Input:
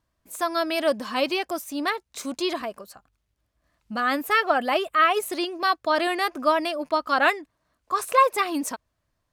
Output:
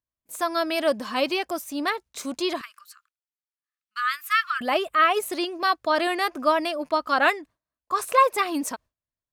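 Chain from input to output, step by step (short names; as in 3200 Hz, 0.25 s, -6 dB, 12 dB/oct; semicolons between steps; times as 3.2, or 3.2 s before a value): 2.61–4.61 elliptic high-pass 1200 Hz, stop band 40 dB; gate with hold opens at -44 dBFS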